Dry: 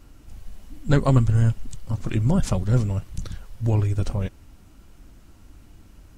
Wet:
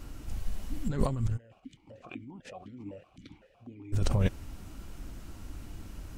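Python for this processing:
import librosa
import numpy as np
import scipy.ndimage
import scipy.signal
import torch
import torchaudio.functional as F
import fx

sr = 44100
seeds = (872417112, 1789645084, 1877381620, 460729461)

y = fx.over_compress(x, sr, threshold_db=-26.0, ratio=-1.0)
y = fx.vowel_held(y, sr, hz=7.9, at=(1.36, 3.92), fade=0.02)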